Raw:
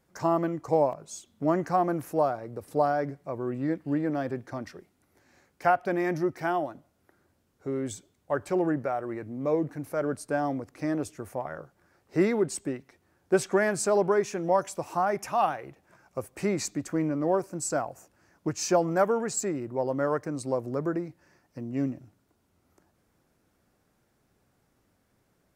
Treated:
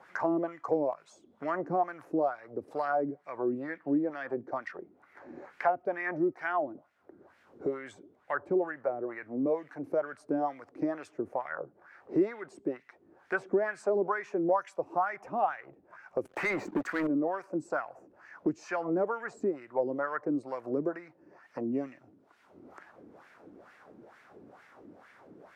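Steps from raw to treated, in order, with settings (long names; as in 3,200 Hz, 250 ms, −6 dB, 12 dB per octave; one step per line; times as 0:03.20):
LFO wah 2.2 Hz 290–2,000 Hz, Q 2.4
0:16.25–0:17.07: leveller curve on the samples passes 3
multiband upward and downward compressor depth 70%
level +3.5 dB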